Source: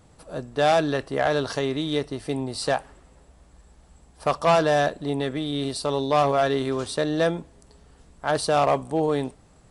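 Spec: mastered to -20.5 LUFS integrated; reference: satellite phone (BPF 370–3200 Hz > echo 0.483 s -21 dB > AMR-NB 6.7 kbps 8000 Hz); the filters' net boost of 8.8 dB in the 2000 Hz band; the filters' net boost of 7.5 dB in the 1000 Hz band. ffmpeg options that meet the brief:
-af "highpass=370,lowpass=3.2k,equalizer=f=1k:t=o:g=9,equalizer=f=2k:t=o:g=8.5,aecho=1:1:483:0.0891" -ar 8000 -c:a libopencore_amrnb -b:a 6700

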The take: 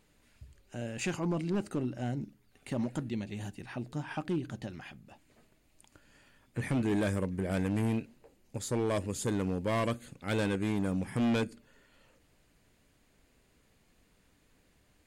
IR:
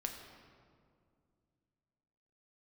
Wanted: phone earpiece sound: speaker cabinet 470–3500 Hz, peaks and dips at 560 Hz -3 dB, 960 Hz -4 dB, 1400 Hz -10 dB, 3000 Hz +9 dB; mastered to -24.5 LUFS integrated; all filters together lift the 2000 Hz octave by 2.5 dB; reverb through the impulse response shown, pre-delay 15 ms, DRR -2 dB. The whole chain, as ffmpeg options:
-filter_complex "[0:a]equalizer=f=2k:t=o:g=4.5,asplit=2[a][b];[1:a]atrim=start_sample=2205,adelay=15[c];[b][c]afir=irnorm=-1:irlink=0,volume=2.5dB[d];[a][d]amix=inputs=2:normalize=0,highpass=470,equalizer=f=560:t=q:w=4:g=-3,equalizer=f=960:t=q:w=4:g=-4,equalizer=f=1.4k:t=q:w=4:g=-10,equalizer=f=3k:t=q:w=4:g=9,lowpass=f=3.5k:w=0.5412,lowpass=f=3.5k:w=1.3066,volume=11dB"

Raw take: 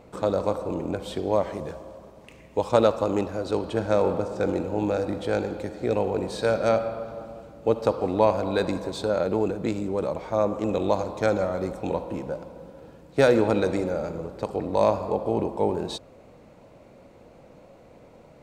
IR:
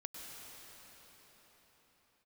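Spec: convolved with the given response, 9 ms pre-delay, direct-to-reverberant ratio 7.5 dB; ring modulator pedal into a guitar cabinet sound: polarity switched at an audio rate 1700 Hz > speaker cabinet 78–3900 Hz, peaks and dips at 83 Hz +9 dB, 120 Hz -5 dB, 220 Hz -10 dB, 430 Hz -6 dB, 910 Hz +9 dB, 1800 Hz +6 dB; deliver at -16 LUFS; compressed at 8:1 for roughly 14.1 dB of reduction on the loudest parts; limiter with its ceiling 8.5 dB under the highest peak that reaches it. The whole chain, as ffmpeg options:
-filter_complex "[0:a]acompressor=threshold=-29dB:ratio=8,alimiter=limit=-24dB:level=0:latency=1,asplit=2[a][b];[1:a]atrim=start_sample=2205,adelay=9[c];[b][c]afir=irnorm=-1:irlink=0,volume=-5.5dB[d];[a][d]amix=inputs=2:normalize=0,aeval=exprs='val(0)*sgn(sin(2*PI*1700*n/s))':c=same,highpass=78,equalizer=f=83:t=q:w=4:g=9,equalizer=f=120:t=q:w=4:g=-5,equalizer=f=220:t=q:w=4:g=-10,equalizer=f=430:t=q:w=4:g=-6,equalizer=f=910:t=q:w=4:g=9,equalizer=f=1.8k:t=q:w=4:g=6,lowpass=f=3.9k:w=0.5412,lowpass=f=3.9k:w=1.3066,volume=15.5dB"

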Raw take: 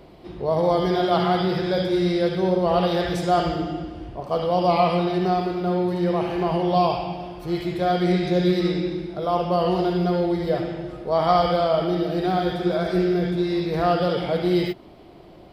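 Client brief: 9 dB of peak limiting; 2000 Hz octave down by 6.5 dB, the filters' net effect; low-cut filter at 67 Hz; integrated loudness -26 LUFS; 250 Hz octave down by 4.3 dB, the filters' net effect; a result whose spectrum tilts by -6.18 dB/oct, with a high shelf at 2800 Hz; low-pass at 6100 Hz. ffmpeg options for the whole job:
-af "highpass=67,lowpass=6.1k,equalizer=f=250:t=o:g=-8,equalizer=f=2k:t=o:g=-6,highshelf=f=2.8k:g=-6.5,volume=1.5dB,alimiter=limit=-16dB:level=0:latency=1"

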